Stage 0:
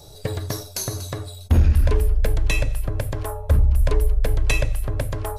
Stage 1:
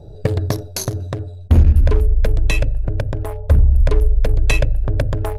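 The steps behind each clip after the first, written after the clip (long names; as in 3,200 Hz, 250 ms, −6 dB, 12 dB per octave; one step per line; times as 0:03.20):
adaptive Wiener filter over 41 samples
speech leveller within 5 dB 2 s
high-shelf EQ 6,400 Hz −4.5 dB
level +4 dB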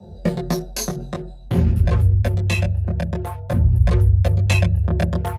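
comb filter 6 ms, depth 84%
multi-voice chorus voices 2, 0.5 Hz, delay 20 ms, depth 4.7 ms
frequency shifter +45 Hz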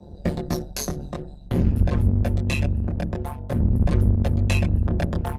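sub-octave generator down 1 octave, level −5 dB
amplitude modulation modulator 140 Hz, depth 65%
in parallel at −11 dB: gain into a clipping stage and back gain 18.5 dB
on the sum: level −2.5 dB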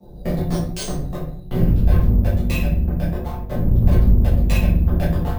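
rectangular room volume 55 cubic metres, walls mixed, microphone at 1.6 metres
bad sample-rate conversion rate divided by 3×, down none, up hold
level −6.5 dB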